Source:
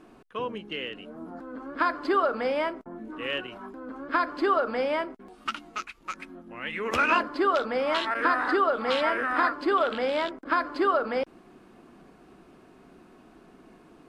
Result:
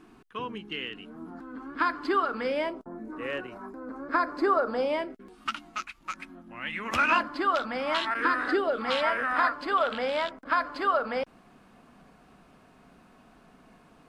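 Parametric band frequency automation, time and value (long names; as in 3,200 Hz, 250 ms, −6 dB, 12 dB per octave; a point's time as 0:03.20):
parametric band −13 dB 0.51 octaves
0:02.36 570 Hz
0:02.96 3,100 Hz
0:04.61 3,100 Hz
0:05.50 440 Hz
0:08.01 440 Hz
0:08.69 1,300 Hz
0:08.93 350 Hz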